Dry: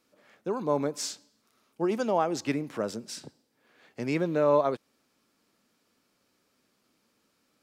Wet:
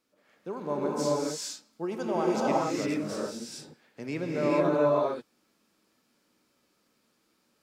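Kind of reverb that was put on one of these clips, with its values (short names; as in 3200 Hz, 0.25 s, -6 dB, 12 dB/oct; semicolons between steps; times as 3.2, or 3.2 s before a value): non-linear reverb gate 0.47 s rising, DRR -5.5 dB; gain -6 dB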